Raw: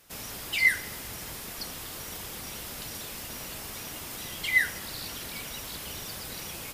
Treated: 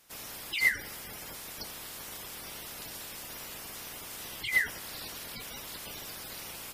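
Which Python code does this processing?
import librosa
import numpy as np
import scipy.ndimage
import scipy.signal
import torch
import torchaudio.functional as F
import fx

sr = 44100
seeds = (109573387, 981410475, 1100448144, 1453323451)

y = fx.spec_quant(x, sr, step_db=30)
y = F.gain(torch.from_numpy(y), -3.0).numpy()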